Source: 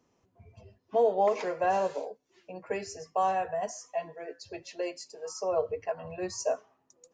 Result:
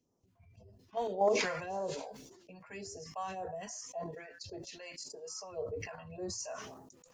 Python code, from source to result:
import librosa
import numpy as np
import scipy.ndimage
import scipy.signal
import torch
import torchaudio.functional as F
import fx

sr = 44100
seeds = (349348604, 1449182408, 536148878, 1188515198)

p1 = fx.level_steps(x, sr, step_db=23)
p2 = x + (p1 * 10.0 ** (3.0 / 20.0))
p3 = fx.phaser_stages(p2, sr, stages=2, low_hz=340.0, high_hz=2500.0, hz=1.8, feedback_pct=25)
p4 = fx.sustainer(p3, sr, db_per_s=47.0)
y = p4 * 10.0 ** (-8.5 / 20.0)